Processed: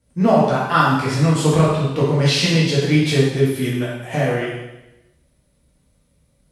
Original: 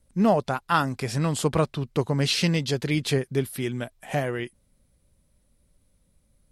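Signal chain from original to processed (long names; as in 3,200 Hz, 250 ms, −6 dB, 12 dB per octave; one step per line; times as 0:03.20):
high-pass filter 51 Hz
high-shelf EQ 11,000 Hz −10.5 dB
dense smooth reverb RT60 0.96 s, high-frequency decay 1×, DRR −7 dB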